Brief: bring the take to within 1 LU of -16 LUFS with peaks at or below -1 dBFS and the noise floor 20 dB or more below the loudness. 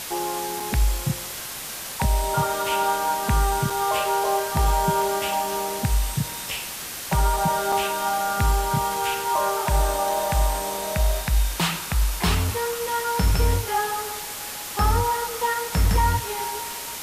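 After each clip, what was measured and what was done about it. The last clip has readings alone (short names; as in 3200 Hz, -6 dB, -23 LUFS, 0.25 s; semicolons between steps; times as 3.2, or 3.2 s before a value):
dropouts 3; longest dropout 3.7 ms; noise floor -34 dBFS; noise floor target -44 dBFS; loudness -24.0 LUFS; peak -10.0 dBFS; loudness target -16.0 LUFS
-> interpolate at 0.6/3.7/7.72, 3.7 ms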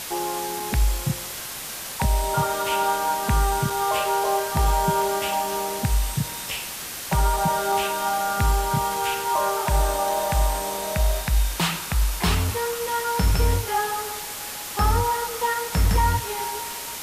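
dropouts 0; noise floor -34 dBFS; noise floor target -44 dBFS
-> denoiser 10 dB, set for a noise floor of -34 dBFS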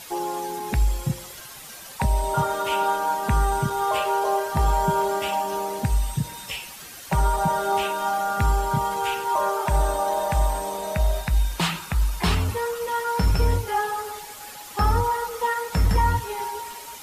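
noise floor -41 dBFS; noise floor target -45 dBFS
-> denoiser 6 dB, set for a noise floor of -41 dBFS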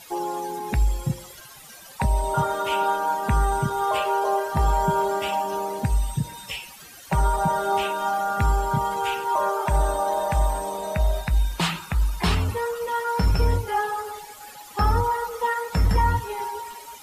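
noise floor -45 dBFS; loudness -24.5 LUFS; peak -11.5 dBFS; loudness target -16.0 LUFS
-> gain +8.5 dB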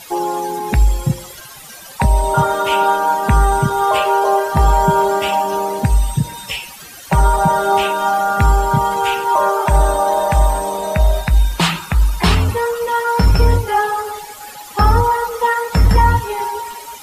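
loudness -16.0 LUFS; peak -3.0 dBFS; noise floor -36 dBFS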